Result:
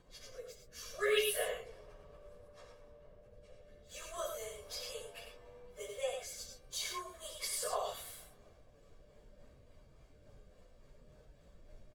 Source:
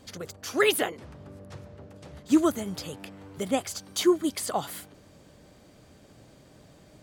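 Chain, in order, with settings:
Butterworth high-pass 410 Hz 96 dB per octave
high-shelf EQ 2,300 Hz +3.5 dB
comb filter 1.8 ms, depth 67%
background noise brown −47 dBFS
rotating-speaker cabinet horn 0.6 Hz, later 6 Hz, at 0:04.43
time stretch by phase vocoder 1.7×
tape delay 235 ms, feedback 70%, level −24 dB, low-pass 1,500 Hz
reverb whose tail is shaped and stops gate 130 ms rising, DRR 3 dB
one half of a high-frequency compander decoder only
level −8 dB

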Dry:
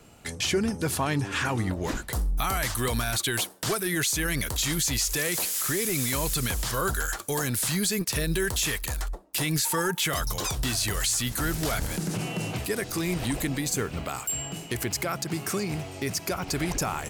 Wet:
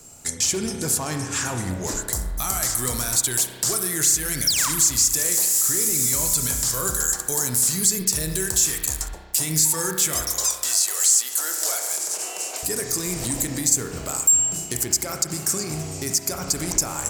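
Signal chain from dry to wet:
0:04.47–0:04.69: sound drawn into the spectrogram fall 890–6,000 Hz −21 dBFS
0:10.22–0:12.63: high-pass filter 470 Hz 24 dB per octave
wave folding −19 dBFS
high shelf with overshoot 4,300 Hz +10.5 dB, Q 1.5
convolution reverb RT60 1.4 s, pre-delay 32 ms, DRR 4.5 dB
downward compressor 1.5 to 1, threshold −25 dBFS, peak gain reduction 5 dB
parametric band 7,500 Hz +6 dB 0.22 octaves

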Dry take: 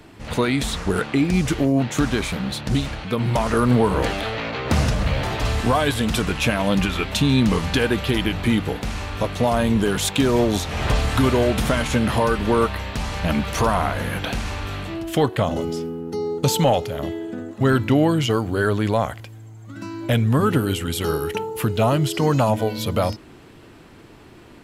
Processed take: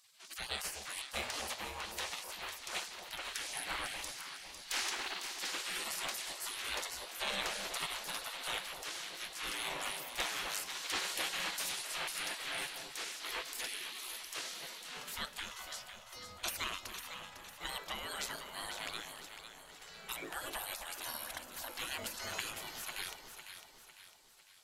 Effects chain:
mains-hum notches 60/120/180/240/300/360 Hz
gate on every frequency bin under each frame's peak −25 dB weak
delay that swaps between a low-pass and a high-pass 251 ms, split 950 Hz, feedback 67%, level −5.5 dB
level −4 dB

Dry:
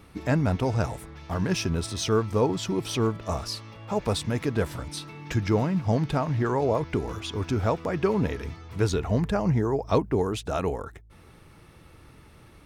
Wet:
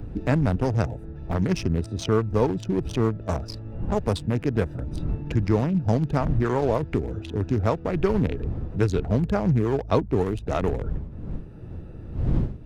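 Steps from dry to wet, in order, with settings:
adaptive Wiener filter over 41 samples
wind on the microphone 81 Hz −35 dBFS
multiband upward and downward compressor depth 40%
level +2.5 dB

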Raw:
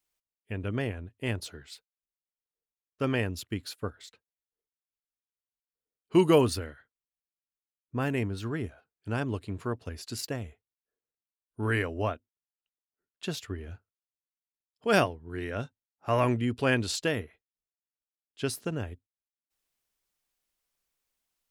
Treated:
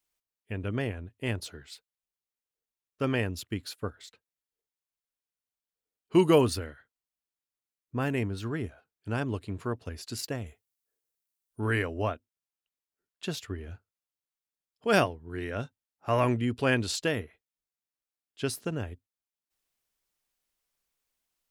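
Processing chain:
0:10.46–0:11.60: high-shelf EQ 5,200 Hz +11.5 dB

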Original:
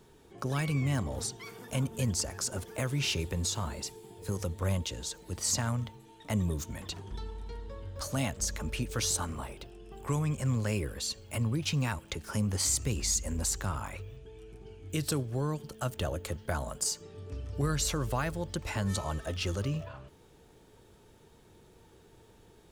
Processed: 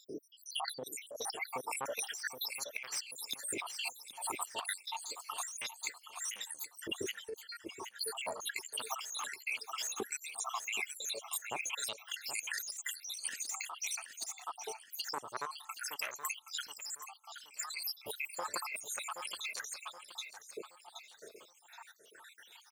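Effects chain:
time-frequency cells dropped at random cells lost 85%
soft clipping −33.5 dBFS, distortion −9 dB
auto-filter high-pass saw up 0.3 Hz 260–3,400 Hz
on a send: repeating echo 773 ms, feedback 38%, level −12.5 dB
on the sum: compressor whose output falls as the input rises −49 dBFS, ratio −1
level +10 dB

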